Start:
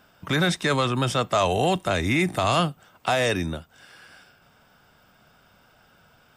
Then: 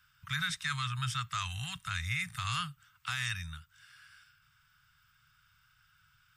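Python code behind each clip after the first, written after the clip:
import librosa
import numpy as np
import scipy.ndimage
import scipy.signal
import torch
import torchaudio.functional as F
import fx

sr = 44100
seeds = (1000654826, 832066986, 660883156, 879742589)

y = scipy.signal.sosfilt(scipy.signal.ellip(3, 1.0, 70, [130.0, 1300.0], 'bandstop', fs=sr, output='sos'), x)
y = y * 10.0 ** (-7.5 / 20.0)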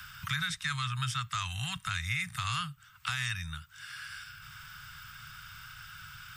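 y = fx.band_squash(x, sr, depth_pct=70)
y = y * 10.0 ** (1.5 / 20.0)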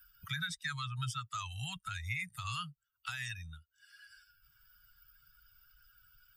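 y = fx.bin_expand(x, sr, power=2.0)
y = y * 10.0 ** (-1.5 / 20.0)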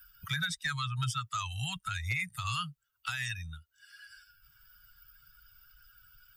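y = np.clip(x, -10.0 ** (-29.5 / 20.0), 10.0 ** (-29.5 / 20.0))
y = y * 10.0 ** (5.0 / 20.0)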